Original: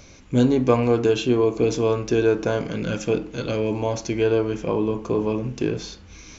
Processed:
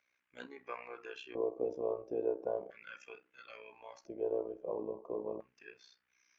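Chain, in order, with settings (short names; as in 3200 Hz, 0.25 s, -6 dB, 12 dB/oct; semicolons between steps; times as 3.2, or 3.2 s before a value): LFO band-pass square 0.37 Hz 590–1800 Hz; AM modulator 62 Hz, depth 65%; spectral noise reduction 11 dB; gain -6.5 dB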